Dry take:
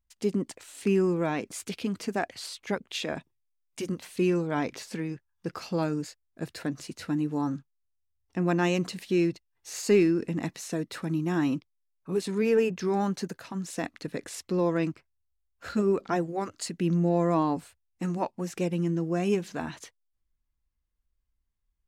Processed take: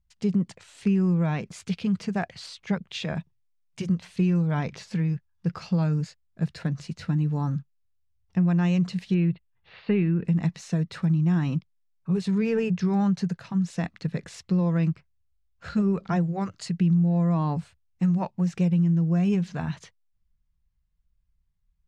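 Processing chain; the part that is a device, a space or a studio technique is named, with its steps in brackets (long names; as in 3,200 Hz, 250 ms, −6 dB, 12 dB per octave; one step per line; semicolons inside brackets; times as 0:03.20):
0:09.14–0:10.25: Butterworth low-pass 3,600 Hz 48 dB per octave
jukebox (low-pass filter 5,800 Hz 12 dB per octave; low shelf with overshoot 220 Hz +7.5 dB, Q 3; downward compressor 6 to 1, threshold −19 dBFS, peak gain reduction 9 dB)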